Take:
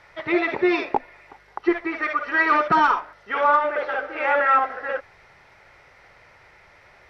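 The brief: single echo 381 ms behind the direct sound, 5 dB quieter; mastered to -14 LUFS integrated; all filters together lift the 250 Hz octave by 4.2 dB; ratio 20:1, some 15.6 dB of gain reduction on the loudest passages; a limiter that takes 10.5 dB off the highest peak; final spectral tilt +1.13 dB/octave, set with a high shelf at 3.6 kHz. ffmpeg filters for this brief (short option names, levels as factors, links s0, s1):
-af "equalizer=f=250:t=o:g=7.5,highshelf=f=3600:g=-7,acompressor=threshold=0.0447:ratio=20,alimiter=limit=0.0631:level=0:latency=1,aecho=1:1:381:0.562,volume=8.91"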